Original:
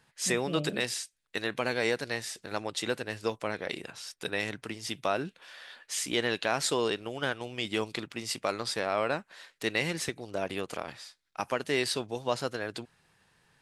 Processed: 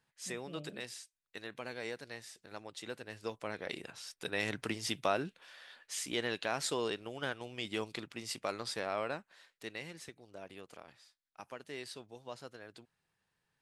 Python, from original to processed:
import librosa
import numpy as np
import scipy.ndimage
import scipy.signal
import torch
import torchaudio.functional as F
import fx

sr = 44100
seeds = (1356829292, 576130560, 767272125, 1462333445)

y = fx.gain(x, sr, db=fx.line((2.79, -13.0), (3.75, -5.0), (4.3, -5.0), (4.63, 2.0), (5.56, -6.5), (8.91, -6.5), (9.92, -16.0)))